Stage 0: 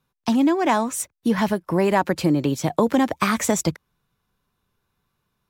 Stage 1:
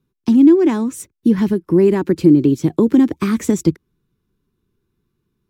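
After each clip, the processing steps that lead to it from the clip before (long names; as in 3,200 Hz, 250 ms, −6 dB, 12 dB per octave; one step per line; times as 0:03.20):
low shelf with overshoot 480 Hz +9.5 dB, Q 3
level −5 dB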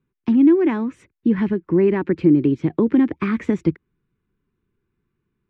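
low-pass with resonance 2,200 Hz, resonance Q 1.8
level −4 dB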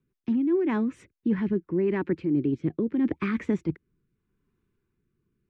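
reversed playback
downward compressor, threshold −21 dBFS, peak gain reduction 11 dB
reversed playback
rotating-speaker cabinet horn 5 Hz, later 0.8 Hz, at 0:00.71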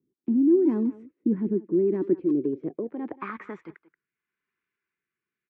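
band-pass filter sweep 310 Hz → 2,000 Hz, 0:02.01–0:04.10
far-end echo of a speakerphone 180 ms, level −16 dB
level +6 dB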